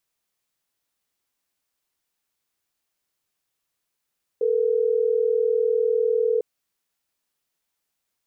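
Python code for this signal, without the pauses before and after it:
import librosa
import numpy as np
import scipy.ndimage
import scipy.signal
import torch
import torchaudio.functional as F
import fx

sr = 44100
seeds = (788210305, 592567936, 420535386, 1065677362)

y = fx.call_progress(sr, length_s=3.12, kind='ringback tone', level_db=-21.0)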